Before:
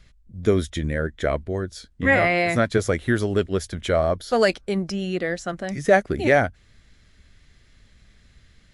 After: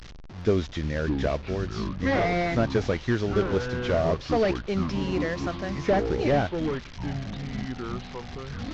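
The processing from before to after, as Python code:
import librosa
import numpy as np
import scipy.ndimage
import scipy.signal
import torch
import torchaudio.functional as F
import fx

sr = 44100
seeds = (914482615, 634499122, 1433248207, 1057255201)

y = fx.delta_mod(x, sr, bps=32000, step_db=-33.5)
y = fx.echo_pitch(y, sr, ms=412, semitones=-6, count=3, db_per_echo=-6.0)
y = F.gain(torch.from_numpy(y), -3.5).numpy()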